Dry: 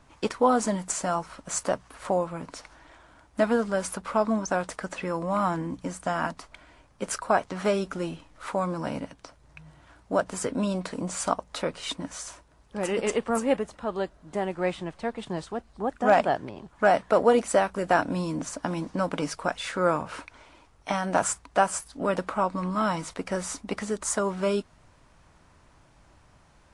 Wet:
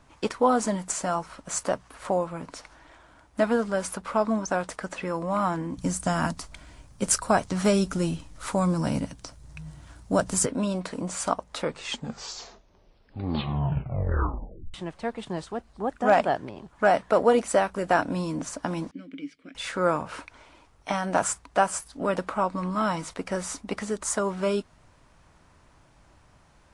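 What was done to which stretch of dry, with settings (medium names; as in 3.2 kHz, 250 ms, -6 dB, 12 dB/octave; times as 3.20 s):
5.77–10.46 s: tone controls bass +11 dB, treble +11 dB
11.53 s: tape stop 3.21 s
18.91–19.55 s: vowel filter i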